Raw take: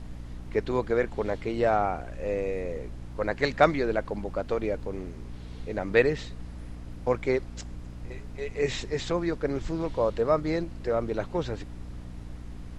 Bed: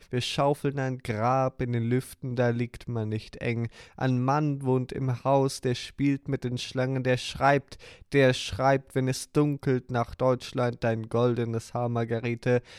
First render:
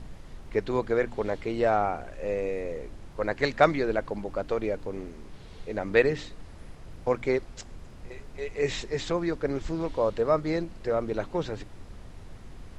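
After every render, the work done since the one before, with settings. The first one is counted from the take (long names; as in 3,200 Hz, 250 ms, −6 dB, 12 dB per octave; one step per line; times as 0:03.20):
hum removal 60 Hz, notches 5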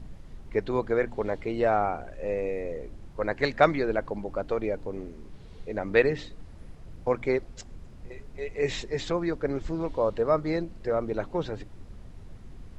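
broadband denoise 6 dB, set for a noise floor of −46 dBFS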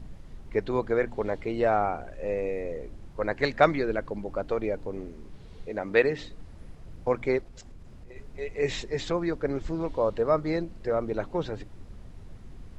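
0:03.81–0:04.26: parametric band 800 Hz −5.5 dB
0:05.69–0:06.20: low-shelf EQ 100 Hz −11.5 dB
0:07.41–0:08.16: downward compressor, threshold −41 dBFS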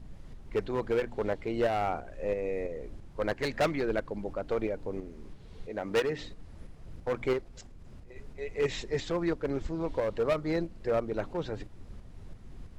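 gain into a clipping stage and back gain 21.5 dB
shaped tremolo saw up 3 Hz, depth 45%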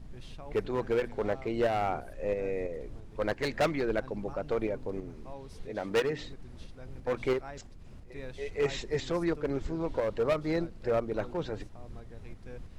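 mix in bed −23 dB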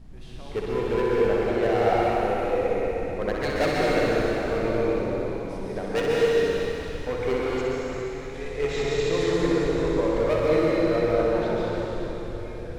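flutter between parallel walls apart 10.8 metres, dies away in 0.71 s
dense smooth reverb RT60 3.8 s, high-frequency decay 0.95×, pre-delay 110 ms, DRR −5.5 dB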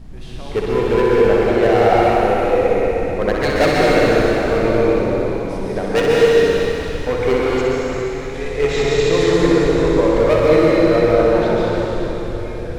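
level +9 dB
brickwall limiter −2 dBFS, peak gain reduction 2 dB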